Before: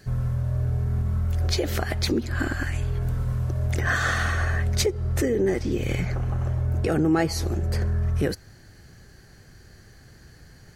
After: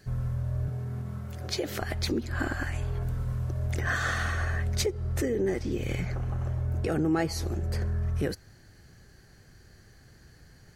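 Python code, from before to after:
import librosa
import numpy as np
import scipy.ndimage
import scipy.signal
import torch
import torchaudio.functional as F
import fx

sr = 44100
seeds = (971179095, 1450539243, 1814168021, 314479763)

y = fx.highpass(x, sr, hz=110.0, slope=24, at=(0.68, 1.82))
y = fx.peak_eq(y, sr, hz=800.0, db=5.5, octaves=1.4, at=(2.33, 3.04))
y = y * librosa.db_to_amplitude(-5.0)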